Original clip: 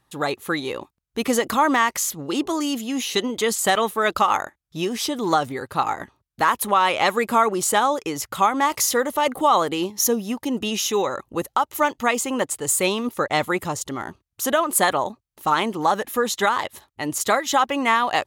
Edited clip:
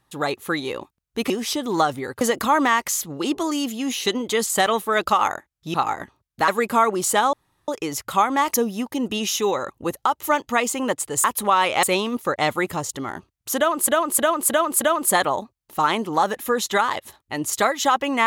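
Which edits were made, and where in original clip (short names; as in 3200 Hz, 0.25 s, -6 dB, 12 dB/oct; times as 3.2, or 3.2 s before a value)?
4.83–5.74 move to 1.3
6.48–7.07 move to 12.75
7.92 insert room tone 0.35 s
8.78–10.05 cut
14.49–14.8 loop, 5 plays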